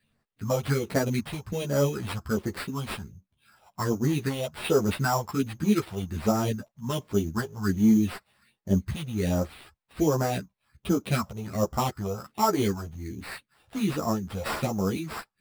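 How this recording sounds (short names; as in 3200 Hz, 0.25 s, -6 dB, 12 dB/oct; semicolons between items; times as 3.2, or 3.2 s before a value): phasing stages 4, 1.3 Hz, lowest notch 280–2600 Hz; aliases and images of a low sample rate 6400 Hz, jitter 0%; a shimmering, thickened sound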